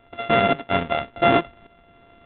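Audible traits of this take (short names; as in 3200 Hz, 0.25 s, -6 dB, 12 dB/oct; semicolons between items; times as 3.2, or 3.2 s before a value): a buzz of ramps at a fixed pitch in blocks of 64 samples; tremolo saw up 1.2 Hz, depth 45%; G.726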